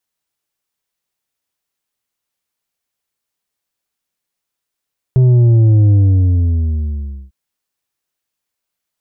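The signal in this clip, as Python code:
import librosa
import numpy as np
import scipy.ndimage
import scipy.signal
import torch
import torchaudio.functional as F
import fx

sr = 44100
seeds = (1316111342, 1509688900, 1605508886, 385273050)

y = fx.sub_drop(sr, level_db=-7, start_hz=130.0, length_s=2.15, drive_db=6, fade_s=1.4, end_hz=65.0)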